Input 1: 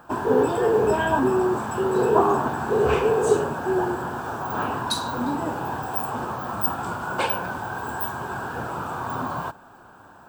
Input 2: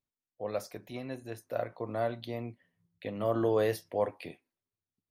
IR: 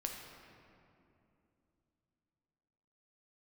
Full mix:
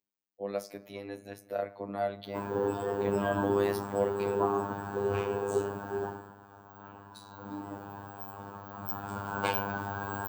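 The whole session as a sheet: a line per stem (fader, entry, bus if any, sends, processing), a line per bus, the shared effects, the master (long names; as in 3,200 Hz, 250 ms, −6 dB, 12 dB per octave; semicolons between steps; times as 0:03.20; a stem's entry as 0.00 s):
0:06.04 −10 dB → 0:06.34 −22.5 dB → 0:07.22 −22.5 dB → 0:07.51 −14.5 dB → 0:08.64 −14.5 dB → 0:09.37 −4.5 dB, 2.25 s, no send, no processing
−0.5 dB, 0.00 s, send −13 dB, high-pass filter 160 Hz 24 dB per octave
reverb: on, RT60 2.8 s, pre-delay 7 ms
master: low-shelf EQ 320 Hz +5.5 dB; phases set to zero 100 Hz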